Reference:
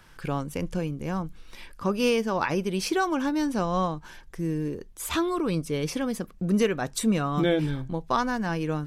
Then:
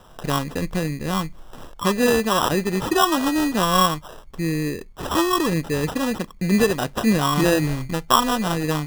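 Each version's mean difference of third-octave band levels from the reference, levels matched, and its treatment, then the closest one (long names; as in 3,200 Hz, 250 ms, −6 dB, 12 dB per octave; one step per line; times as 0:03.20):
8.0 dB: parametric band 1,100 Hz +7 dB 0.34 octaves
decimation without filtering 20×
level +5 dB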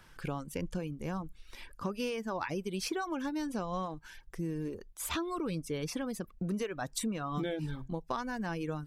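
3.0 dB: reverb reduction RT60 0.62 s
downward compressor, threshold −28 dBFS, peak gain reduction 9.5 dB
level −3.5 dB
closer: second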